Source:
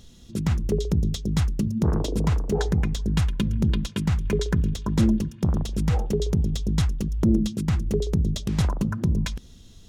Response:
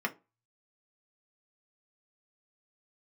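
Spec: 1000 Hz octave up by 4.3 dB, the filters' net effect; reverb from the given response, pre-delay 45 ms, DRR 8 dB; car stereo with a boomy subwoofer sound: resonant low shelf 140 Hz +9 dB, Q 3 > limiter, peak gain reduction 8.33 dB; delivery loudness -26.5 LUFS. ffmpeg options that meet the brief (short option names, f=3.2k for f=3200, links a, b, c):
-filter_complex "[0:a]equalizer=f=1k:t=o:g=5.5,asplit=2[a][b];[1:a]atrim=start_sample=2205,adelay=45[c];[b][c]afir=irnorm=-1:irlink=0,volume=-15dB[d];[a][d]amix=inputs=2:normalize=0,lowshelf=f=140:t=q:w=3:g=9,volume=-8dB,alimiter=limit=-16.5dB:level=0:latency=1"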